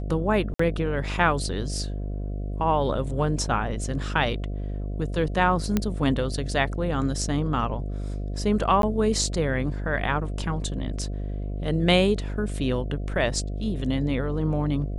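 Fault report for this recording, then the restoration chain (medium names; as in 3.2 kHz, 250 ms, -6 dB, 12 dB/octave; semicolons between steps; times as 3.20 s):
buzz 50 Hz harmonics 14 -30 dBFS
0.54–0.59 s: dropout 54 ms
5.77 s: pop -9 dBFS
8.82–8.83 s: dropout 12 ms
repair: de-click; de-hum 50 Hz, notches 14; interpolate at 0.54 s, 54 ms; interpolate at 8.82 s, 12 ms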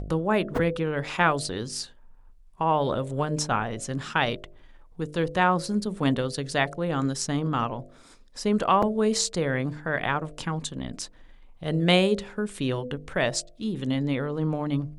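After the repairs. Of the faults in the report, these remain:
nothing left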